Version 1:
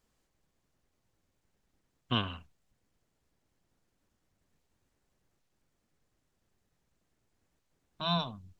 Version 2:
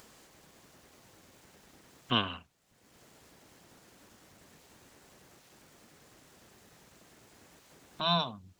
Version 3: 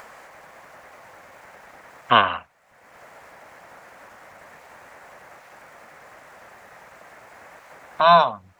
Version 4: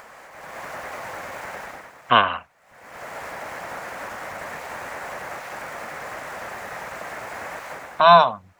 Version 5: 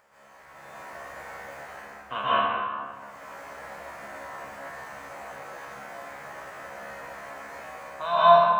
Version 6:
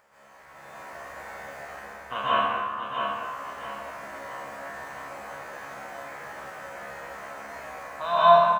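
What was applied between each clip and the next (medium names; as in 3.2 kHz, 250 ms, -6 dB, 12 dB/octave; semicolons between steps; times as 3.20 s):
high-pass 230 Hz 6 dB/octave; in parallel at -3 dB: upward compressor, threshold -34 dBFS; on the sum: trim -1 dB
high-order bell 1.1 kHz +15.5 dB 2.5 oct; trim +2.5 dB
level rider gain up to 13.5 dB; trim -1 dB
feedback comb 69 Hz, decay 0.59 s, harmonics all, mix 90%; plate-style reverb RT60 1.9 s, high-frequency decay 0.55×, pre-delay 110 ms, DRR -10 dB; trim -7.5 dB
feedback delay 667 ms, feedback 33%, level -6 dB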